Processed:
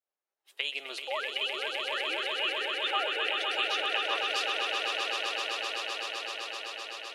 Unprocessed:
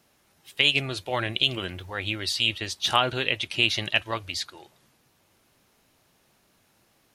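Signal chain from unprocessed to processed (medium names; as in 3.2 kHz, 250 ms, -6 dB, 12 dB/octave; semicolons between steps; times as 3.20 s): 1.01–3.27 s: formants replaced by sine waves; expander -52 dBFS; high-pass 410 Hz 24 dB/octave; compression, threshold -22 dBFS, peak gain reduction 7.5 dB; echo with a slow build-up 128 ms, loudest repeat 8, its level -6 dB; tape noise reduction on one side only decoder only; trim -7 dB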